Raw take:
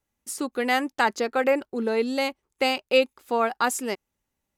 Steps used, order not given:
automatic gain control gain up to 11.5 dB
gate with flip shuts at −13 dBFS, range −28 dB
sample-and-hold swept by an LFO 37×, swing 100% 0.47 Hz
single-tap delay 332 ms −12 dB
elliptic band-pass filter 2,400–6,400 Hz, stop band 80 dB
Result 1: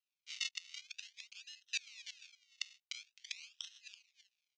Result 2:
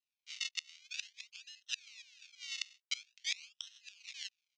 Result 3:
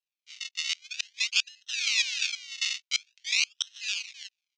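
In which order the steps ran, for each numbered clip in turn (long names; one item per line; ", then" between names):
automatic gain control, then gate with flip, then single-tap delay, then sample-and-hold swept by an LFO, then elliptic band-pass filter
single-tap delay, then automatic gain control, then sample-and-hold swept by an LFO, then gate with flip, then elliptic band-pass filter
single-tap delay, then sample-and-hold swept by an LFO, then gate with flip, then automatic gain control, then elliptic band-pass filter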